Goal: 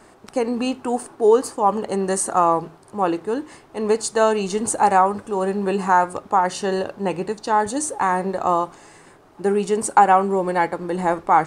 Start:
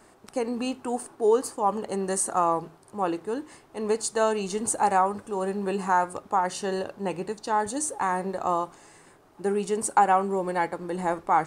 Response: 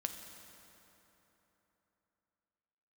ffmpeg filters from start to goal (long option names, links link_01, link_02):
-af "highshelf=frequency=8700:gain=-7,volume=6.5dB"